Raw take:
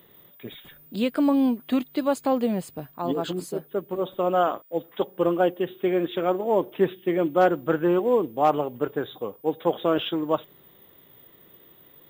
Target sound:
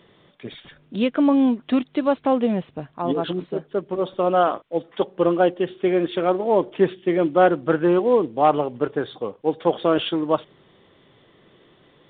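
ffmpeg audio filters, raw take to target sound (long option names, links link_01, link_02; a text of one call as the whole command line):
ffmpeg -i in.wav -af "volume=3.5dB" -ar 8000 -c:a pcm_mulaw out.wav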